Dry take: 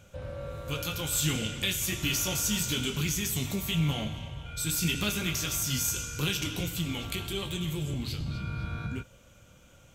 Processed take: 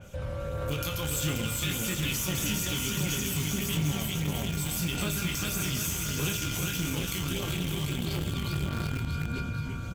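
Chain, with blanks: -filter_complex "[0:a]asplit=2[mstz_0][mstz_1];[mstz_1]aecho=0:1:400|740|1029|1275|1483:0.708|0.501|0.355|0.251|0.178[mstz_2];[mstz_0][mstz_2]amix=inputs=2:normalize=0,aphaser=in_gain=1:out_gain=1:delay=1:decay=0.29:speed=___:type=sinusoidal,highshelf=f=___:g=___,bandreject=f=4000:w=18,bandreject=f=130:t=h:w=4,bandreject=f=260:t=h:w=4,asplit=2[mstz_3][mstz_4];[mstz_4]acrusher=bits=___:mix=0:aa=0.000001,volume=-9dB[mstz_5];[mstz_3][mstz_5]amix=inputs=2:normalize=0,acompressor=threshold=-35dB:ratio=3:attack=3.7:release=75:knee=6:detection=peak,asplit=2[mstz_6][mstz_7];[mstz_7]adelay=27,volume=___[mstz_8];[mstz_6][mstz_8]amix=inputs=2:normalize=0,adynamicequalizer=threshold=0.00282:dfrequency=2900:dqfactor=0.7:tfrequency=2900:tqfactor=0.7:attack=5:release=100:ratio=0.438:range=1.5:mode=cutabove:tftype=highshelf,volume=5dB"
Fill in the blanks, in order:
1.6, 8800, 4.5, 3, -13dB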